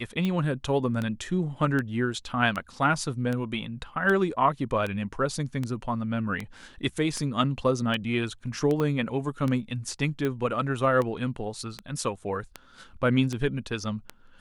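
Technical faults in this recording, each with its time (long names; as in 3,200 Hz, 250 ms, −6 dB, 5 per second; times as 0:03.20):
scratch tick 78 rpm −17 dBFS
0:08.80: click −17 dBFS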